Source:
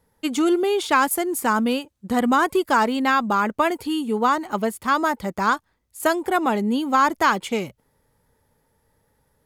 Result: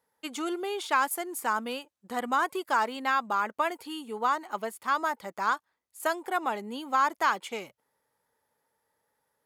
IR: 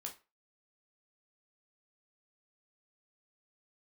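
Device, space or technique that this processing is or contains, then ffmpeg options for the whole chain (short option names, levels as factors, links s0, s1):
filter by subtraction: -filter_complex "[0:a]asplit=2[s0][s1];[s1]lowpass=930,volume=-1[s2];[s0][s2]amix=inputs=2:normalize=0,volume=0.376"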